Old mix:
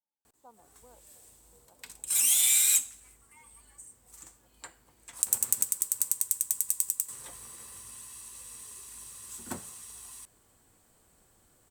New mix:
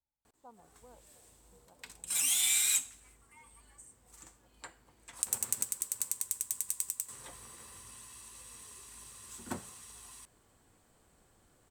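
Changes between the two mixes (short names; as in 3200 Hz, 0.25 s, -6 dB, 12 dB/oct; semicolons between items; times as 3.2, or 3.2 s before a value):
speech: remove HPF 240 Hz; master: add high shelf 7500 Hz -10 dB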